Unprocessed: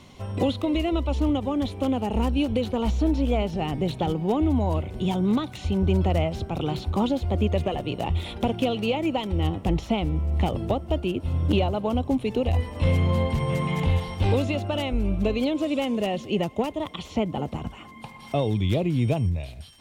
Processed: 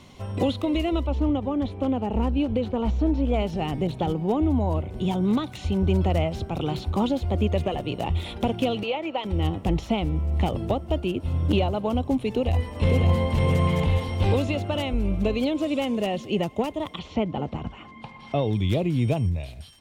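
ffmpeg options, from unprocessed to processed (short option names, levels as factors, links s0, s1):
-filter_complex "[0:a]asettb=1/sr,asplit=3[s0][s1][s2];[s0]atrim=end=1.064[s3];[s1]atrim=start=1.06:end=3.34,asetpts=PTS-STARTPTS,afade=t=in:d=0.004:c=qsin,afade=t=out:st=2.276:d=0.004:c=qsin,lowpass=f=1800:p=1[s4];[s2]atrim=start=3.336[s5];[s3][s4]acrossfade=d=0.004:c1=hsin:c2=qsin[s6];[s6][s5]acrossfade=d=0.004:c1=qsin:c2=hsin,asettb=1/sr,asplit=3[s7][s8][s9];[s7]atrim=end=3.874[s10];[s8]atrim=start=3.87:end=5.21,asetpts=PTS-STARTPTS,afade=t=in:d=0.004:c=qsin,afade=t=out:st=1.336:d=0.004:c=qsin,adynamicequalizer=threshold=0.00708:dfrequency=1500:dqfactor=0.7:tfrequency=1500:tqfactor=0.7:attack=5:release=100:ratio=0.375:range=3:mode=cutabove:tftype=highshelf[s11];[s9]atrim=start=5.206[s12];[s10][s11]acrossfade=d=0.004:c1=hsin:c2=qsin[s13];[s13][s12]acrossfade=d=0.004:c1=qsin:c2=hsin,asettb=1/sr,asplit=3[s14][s15][s16];[s14]atrim=end=8.834[s17];[s15]atrim=start=8.83:end=9.25,asetpts=PTS-STARTPTS,afade=t=in:d=0.004:c=qsin,afade=t=out:st=0.416:d=0.004:c=qsin,acrossover=split=360 4500:gain=0.126 1 0.141[s18][s19][s20];[s18][s19][s20]amix=inputs=3:normalize=0[s21];[s16]atrim=start=9.246[s22];[s17][s21]acrossfade=d=0.004:c1=hsin:c2=qsin[s23];[s23][s22]acrossfade=d=0.004:c1=qsin:c2=hsin,asplit=2[s24][s25];[s25]afade=t=in:st=12.27:d=0.01,afade=t=out:st=13.29:d=0.01,aecho=0:1:550|1100|1650|2200|2750|3300:0.668344|0.300755|0.13534|0.0609028|0.0274063|0.0123328[s26];[s24][s26]amix=inputs=2:normalize=0,asettb=1/sr,asplit=3[s27][s28][s29];[s27]atrim=end=16.994[s30];[s28]atrim=start=16.99:end=18.53,asetpts=PTS-STARTPTS,afade=t=in:d=0.004:c=qsin,afade=t=out:st=1.536:d=0.004:c=qsin,lowpass=4300[s31];[s29]atrim=start=18.526[s32];[s30][s31]acrossfade=d=0.004:c1=hsin:c2=qsin[s33];[s33][s32]acrossfade=d=0.004:c1=qsin:c2=hsin"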